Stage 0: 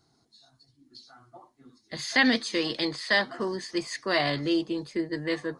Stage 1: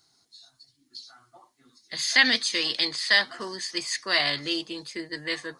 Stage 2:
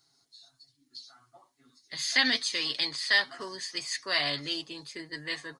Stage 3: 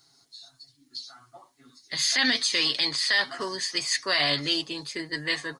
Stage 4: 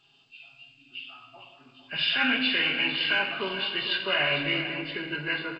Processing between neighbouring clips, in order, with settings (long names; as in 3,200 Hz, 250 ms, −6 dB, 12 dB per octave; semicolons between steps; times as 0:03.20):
tilt shelving filter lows −8.5 dB, about 1,200 Hz
comb filter 7.2 ms, depth 52%; level −5 dB
brickwall limiter −20.5 dBFS, peak gain reduction 9.5 dB; level +7.5 dB
hearing-aid frequency compression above 1,100 Hz 1.5 to 1; single-tap delay 452 ms −11.5 dB; convolution reverb RT60 1.6 s, pre-delay 5 ms, DRR 3 dB; level −1.5 dB